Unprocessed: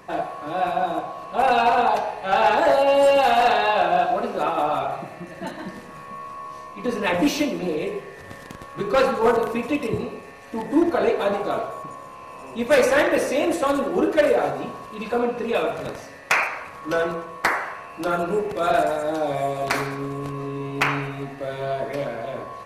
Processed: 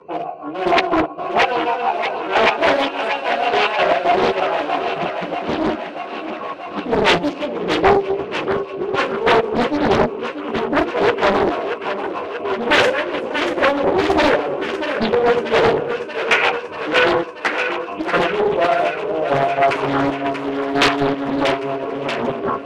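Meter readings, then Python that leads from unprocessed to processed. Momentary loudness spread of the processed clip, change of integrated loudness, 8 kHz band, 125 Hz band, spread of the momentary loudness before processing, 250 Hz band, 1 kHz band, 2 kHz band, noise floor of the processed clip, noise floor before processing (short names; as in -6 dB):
8 LU, +3.5 dB, n/a, +3.0 dB, 18 LU, +4.5 dB, +3.5 dB, +6.5 dB, -30 dBFS, -41 dBFS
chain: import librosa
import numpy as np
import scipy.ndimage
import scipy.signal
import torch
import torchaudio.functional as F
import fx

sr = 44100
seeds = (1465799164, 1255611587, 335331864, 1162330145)

p1 = fx.wiener(x, sr, points=25)
p2 = fx.rider(p1, sr, range_db=5, speed_s=0.5)
p3 = fx.rotary(p2, sr, hz=6.3)
p4 = fx.step_gate(p3, sr, bpm=115, pattern='.....x.x.xx', floor_db=-12.0, edge_ms=4.5)
p5 = fx.chorus_voices(p4, sr, voices=4, hz=0.15, base_ms=12, depth_ms=2.1, mix_pct=60)
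p6 = fx.fold_sine(p5, sr, drive_db=13, ceiling_db=-11.5)
p7 = fx.cabinet(p6, sr, low_hz=180.0, low_slope=12, high_hz=8700.0, hz=(390.0, 1000.0, 1500.0, 2600.0, 7100.0), db=(7, 6, 5, 10, -6))
p8 = fx.doubler(p7, sr, ms=13.0, db=-12.0)
p9 = p8 + fx.echo_thinned(p8, sr, ms=635, feedback_pct=73, hz=330.0, wet_db=-7.5, dry=0)
p10 = fx.doppler_dist(p9, sr, depth_ms=0.9)
y = p10 * librosa.db_to_amplitude(-1.0)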